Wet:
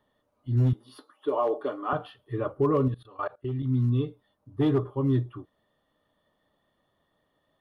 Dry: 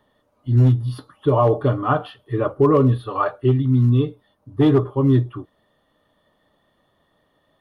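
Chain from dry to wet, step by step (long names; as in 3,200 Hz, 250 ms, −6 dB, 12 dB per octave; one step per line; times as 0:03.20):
0:00.73–0:01.93: high-pass filter 290 Hz 24 dB per octave
0:02.88–0:03.63: output level in coarse steps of 21 dB
level −8.5 dB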